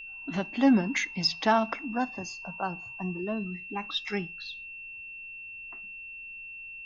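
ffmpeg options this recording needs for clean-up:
-af "bandreject=f=2700:w=30,agate=range=0.0891:threshold=0.0178"

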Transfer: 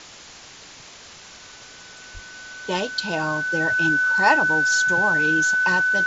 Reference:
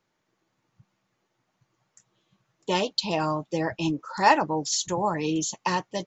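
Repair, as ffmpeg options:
-filter_complex "[0:a]bandreject=f=1500:w=30,asplit=3[s0][s1][s2];[s0]afade=t=out:st=2.13:d=0.02[s3];[s1]highpass=f=140:w=0.5412,highpass=f=140:w=1.3066,afade=t=in:st=2.13:d=0.02,afade=t=out:st=2.25:d=0.02[s4];[s2]afade=t=in:st=2.25:d=0.02[s5];[s3][s4][s5]amix=inputs=3:normalize=0,afwtdn=0.011"

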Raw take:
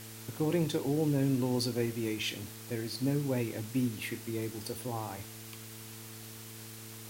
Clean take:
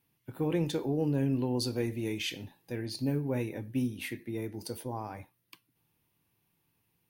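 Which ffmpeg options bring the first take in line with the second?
-af "bandreject=f=111:t=h:w=4,bandreject=f=222:t=h:w=4,bandreject=f=333:t=h:w=4,bandreject=f=444:t=h:w=4,afwtdn=0.004"

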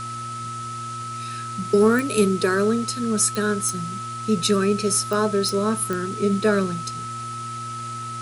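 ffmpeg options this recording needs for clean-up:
-af "adeclick=t=4,bandreject=f=117:t=h:w=4,bandreject=f=234:t=h:w=4,bandreject=f=351:t=h:w=4,bandreject=f=1300:w=30,afftdn=nr=30:nf=-32"

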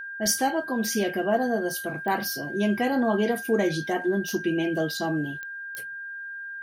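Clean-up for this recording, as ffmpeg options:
-af "adeclick=t=4,bandreject=f=1600:w=30"

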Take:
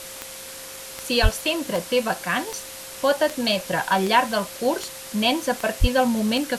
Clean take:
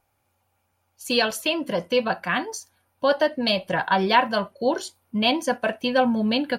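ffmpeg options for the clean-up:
-filter_complex "[0:a]adeclick=t=4,bandreject=f=530:w=30,asplit=3[s0][s1][s2];[s0]afade=t=out:st=1.22:d=0.02[s3];[s1]highpass=f=140:w=0.5412,highpass=f=140:w=1.3066,afade=t=in:st=1.22:d=0.02,afade=t=out:st=1.34:d=0.02[s4];[s2]afade=t=in:st=1.34:d=0.02[s5];[s3][s4][s5]amix=inputs=3:normalize=0,asplit=3[s6][s7][s8];[s6]afade=t=out:st=5.8:d=0.02[s9];[s7]highpass=f=140:w=0.5412,highpass=f=140:w=1.3066,afade=t=in:st=5.8:d=0.02,afade=t=out:st=5.92:d=0.02[s10];[s8]afade=t=in:st=5.92:d=0.02[s11];[s9][s10][s11]amix=inputs=3:normalize=0,afwtdn=0.016"

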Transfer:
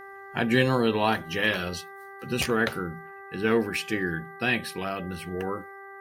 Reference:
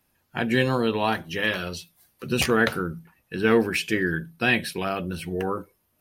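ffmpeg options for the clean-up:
-af "bandreject=f=393.2:t=h:w=4,bandreject=f=786.4:t=h:w=4,bandreject=f=1179.6:t=h:w=4,bandreject=f=1572.8:t=h:w=4,bandreject=f=1966:t=h:w=4,asetnsamples=n=441:p=0,asendcmd='1.81 volume volume 4dB',volume=1"

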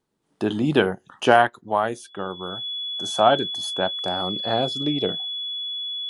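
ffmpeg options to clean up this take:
-af "bandreject=f=3400:w=30"

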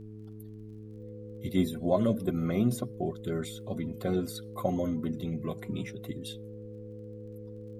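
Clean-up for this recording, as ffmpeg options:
-af "adeclick=t=4,bandreject=f=107.1:t=h:w=4,bandreject=f=214.2:t=h:w=4,bandreject=f=321.3:t=h:w=4,bandreject=f=428.4:t=h:w=4,bandreject=f=500:w=30,agate=range=0.0891:threshold=0.0141"

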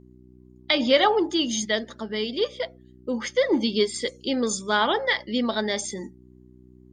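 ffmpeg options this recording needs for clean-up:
-af "bandreject=f=62.2:t=h:w=4,bandreject=f=124.4:t=h:w=4,bandreject=f=186.6:t=h:w=4,bandreject=f=248.8:t=h:w=4,bandreject=f=311:t=h:w=4,bandreject=f=373.2:t=h:w=4"

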